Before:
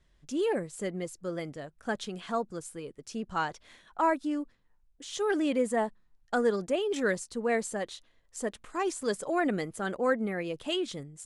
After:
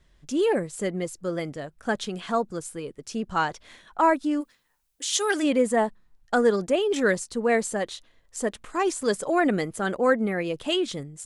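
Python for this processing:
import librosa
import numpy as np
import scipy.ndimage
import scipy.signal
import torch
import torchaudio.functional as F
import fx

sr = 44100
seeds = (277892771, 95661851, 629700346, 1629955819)

y = fx.tilt_eq(x, sr, slope=3.5, at=(4.4, 5.42), fade=0.02)
y = y * 10.0 ** (6.0 / 20.0)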